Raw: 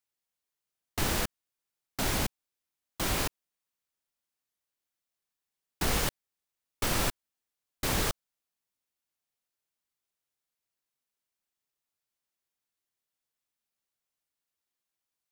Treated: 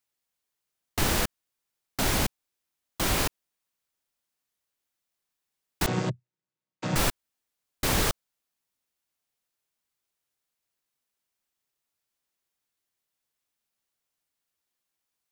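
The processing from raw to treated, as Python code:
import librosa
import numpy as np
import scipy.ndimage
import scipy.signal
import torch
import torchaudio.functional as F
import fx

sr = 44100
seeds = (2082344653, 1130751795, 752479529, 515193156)

y = fx.chord_vocoder(x, sr, chord='major triad', root=47, at=(5.86, 6.96))
y = y * 10.0 ** (4.0 / 20.0)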